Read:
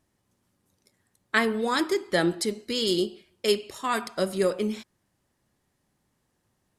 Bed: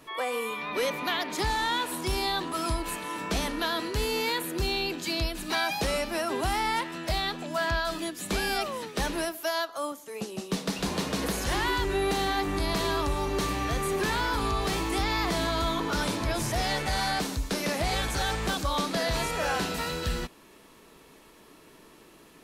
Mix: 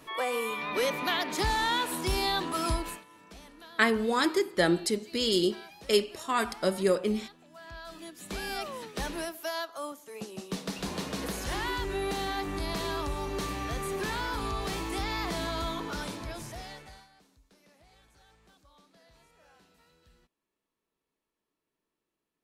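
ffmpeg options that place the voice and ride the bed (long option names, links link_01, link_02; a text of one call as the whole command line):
ffmpeg -i stem1.wav -i stem2.wav -filter_complex "[0:a]adelay=2450,volume=-1dB[link_01];[1:a]volume=16dB,afade=type=out:start_time=2.75:duration=0.3:silence=0.0891251,afade=type=in:start_time=7.62:duration=1.12:silence=0.158489,afade=type=out:start_time=15.61:duration=1.47:silence=0.0398107[link_02];[link_01][link_02]amix=inputs=2:normalize=0" out.wav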